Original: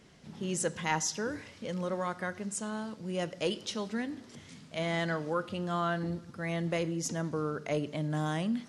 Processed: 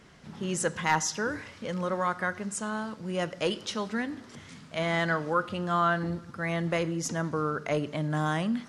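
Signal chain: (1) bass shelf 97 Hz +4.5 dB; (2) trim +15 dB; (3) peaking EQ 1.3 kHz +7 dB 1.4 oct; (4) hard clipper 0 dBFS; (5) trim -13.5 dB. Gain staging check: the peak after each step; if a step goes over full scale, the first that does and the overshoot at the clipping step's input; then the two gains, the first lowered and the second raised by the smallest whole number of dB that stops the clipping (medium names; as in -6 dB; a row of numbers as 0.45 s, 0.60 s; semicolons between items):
-16.0 dBFS, -1.0 dBFS, +3.5 dBFS, 0.0 dBFS, -13.5 dBFS; step 3, 3.5 dB; step 2 +11 dB, step 5 -9.5 dB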